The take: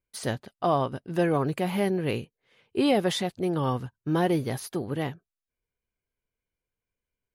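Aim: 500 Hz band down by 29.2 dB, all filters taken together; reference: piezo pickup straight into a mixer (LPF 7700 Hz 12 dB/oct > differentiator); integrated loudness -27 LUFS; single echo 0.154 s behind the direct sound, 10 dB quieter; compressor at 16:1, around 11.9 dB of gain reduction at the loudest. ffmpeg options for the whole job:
-af "equalizer=f=500:t=o:g=-8.5,acompressor=threshold=-34dB:ratio=16,lowpass=7.7k,aderivative,aecho=1:1:154:0.316,volume=25.5dB"

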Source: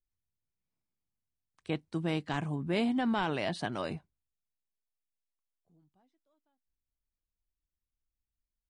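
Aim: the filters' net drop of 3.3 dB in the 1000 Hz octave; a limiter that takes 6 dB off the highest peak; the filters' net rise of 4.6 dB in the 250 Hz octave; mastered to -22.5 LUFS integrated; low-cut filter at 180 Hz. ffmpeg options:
-af "highpass=180,equalizer=f=250:t=o:g=7,equalizer=f=1k:t=o:g=-5,volume=10.5dB,alimiter=limit=-12.5dB:level=0:latency=1"

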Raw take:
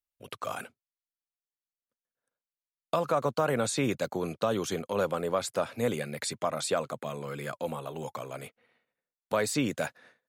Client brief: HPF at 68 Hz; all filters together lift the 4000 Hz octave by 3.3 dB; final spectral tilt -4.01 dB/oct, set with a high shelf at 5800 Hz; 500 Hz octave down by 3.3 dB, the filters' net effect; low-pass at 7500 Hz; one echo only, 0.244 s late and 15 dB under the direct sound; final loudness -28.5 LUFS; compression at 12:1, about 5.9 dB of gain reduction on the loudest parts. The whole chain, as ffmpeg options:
-af "highpass=68,lowpass=7.5k,equalizer=f=500:t=o:g=-4,equalizer=f=4k:t=o:g=5.5,highshelf=f=5.8k:g=-3.5,acompressor=threshold=-30dB:ratio=12,aecho=1:1:244:0.178,volume=8dB"

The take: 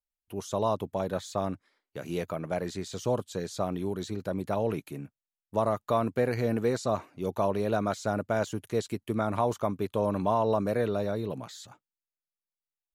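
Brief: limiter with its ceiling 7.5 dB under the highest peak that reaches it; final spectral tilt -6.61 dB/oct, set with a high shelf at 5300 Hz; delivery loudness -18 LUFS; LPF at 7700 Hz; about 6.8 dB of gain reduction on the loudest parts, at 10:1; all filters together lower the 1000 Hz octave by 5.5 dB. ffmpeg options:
-af "lowpass=7.7k,equalizer=f=1k:t=o:g=-7.5,highshelf=f=5.3k:g=-8,acompressor=threshold=-30dB:ratio=10,volume=21.5dB,alimiter=limit=-5.5dB:level=0:latency=1"

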